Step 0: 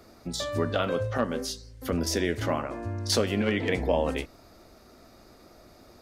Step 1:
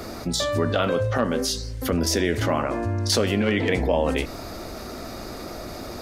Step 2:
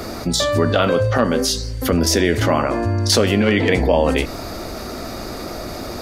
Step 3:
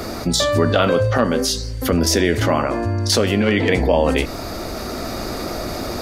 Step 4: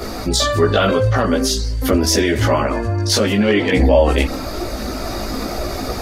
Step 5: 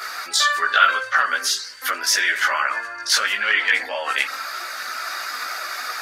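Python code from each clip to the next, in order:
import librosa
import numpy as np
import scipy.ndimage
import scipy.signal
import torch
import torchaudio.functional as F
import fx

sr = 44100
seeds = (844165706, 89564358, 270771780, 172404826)

y1 = fx.env_flatten(x, sr, amount_pct=50)
y1 = y1 * librosa.db_to_amplitude(2.0)
y2 = y1 + 10.0 ** (-53.0 / 20.0) * np.sin(2.0 * np.pi * 4600.0 * np.arange(len(y1)) / sr)
y2 = y2 * librosa.db_to_amplitude(6.0)
y3 = fx.rider(y2, sr, range_db=4, speed_s=2.0)
y3 = y3 * librosa.db_to_amplitude(-1.0)
y4 = fx.chorus_voices(y3, sr, voices=6, hz=0.48, base_ms=17, depth_ms=2.7, mix_pct=55)
y4 = y4 * librosa.db_to_amplitude(4.5)
y5 = fx.highpass_res(y4, sr, hz=1500.0, q=3.3)
y5 = y5 * librosa.db_to_amplitude(-1.5)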